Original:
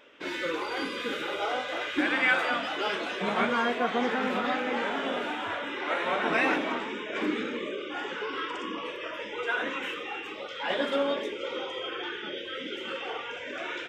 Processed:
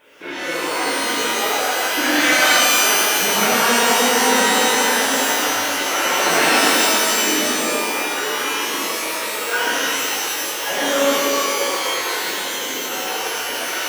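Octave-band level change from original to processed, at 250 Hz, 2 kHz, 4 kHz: +8.0, +11.5, +16.5 dB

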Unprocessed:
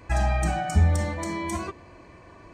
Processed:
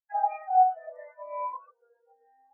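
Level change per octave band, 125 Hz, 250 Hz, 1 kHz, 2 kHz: under -40 dB, under -40 dB, +6.5 dB, -17.0 dB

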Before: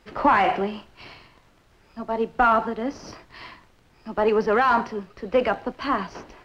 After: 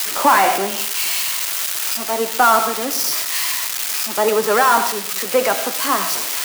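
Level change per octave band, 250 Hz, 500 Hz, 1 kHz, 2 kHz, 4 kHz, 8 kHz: 0.0 dB, +4.0 dB, +5.5 dB, +7.0 dB, +18.0 dB, n/a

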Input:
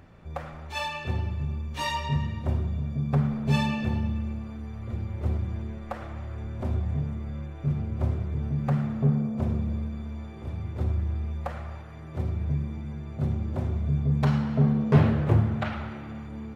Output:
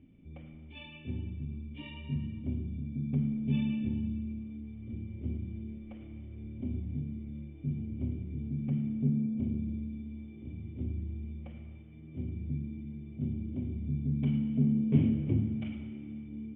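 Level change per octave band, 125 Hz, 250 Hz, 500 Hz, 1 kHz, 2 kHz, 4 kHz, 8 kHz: -8.0 dB, -3.0 dB, -13.0 dB, under -25 dB, under -15 dB, under -10 dB, n/a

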